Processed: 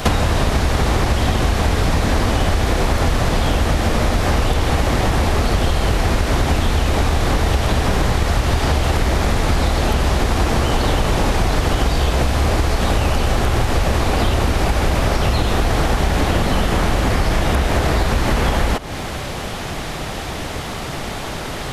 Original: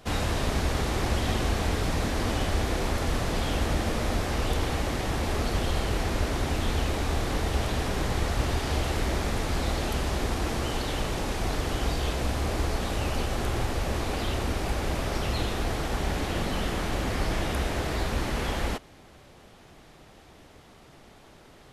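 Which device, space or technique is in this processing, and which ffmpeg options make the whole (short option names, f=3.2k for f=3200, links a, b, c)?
mastering chain: -filter_complex "[0:a]equalizer=f=340:t=o:w=1.5:g=-3.5,acrossover=split=1400|5400[a][b][c];[a]acompressor=threshold=-34dB:ratio=4[d];[b]acompressor=threshold=-50dB:ratio=4[e];[c]acompressor=threshold=-58dB:ratio=4[f];[d][e][f]amix=inputs=3:normalize=0,acompressor=threshold=-40dB:ratio=6,alimiter=level_in=27dB:limit=-1dB:release=50:level=0:latency=1"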